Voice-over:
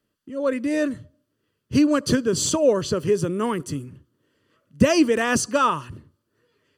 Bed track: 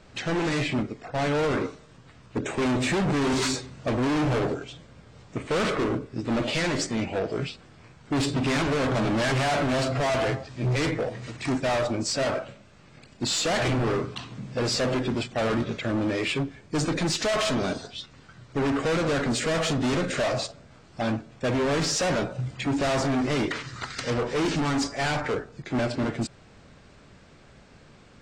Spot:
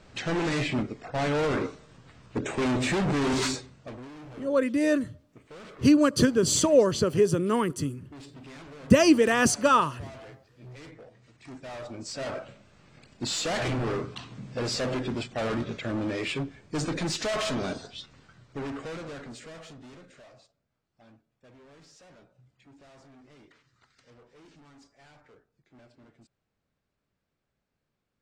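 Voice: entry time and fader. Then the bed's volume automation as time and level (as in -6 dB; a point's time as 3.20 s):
4.10 s, -1.0 dB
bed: 3.46 s -1.5 dB
4.12 s -21 dB
11.27 s -21 dB
12.56 s -4 dB
18.12 s -4 dB
20.49 s -30 dB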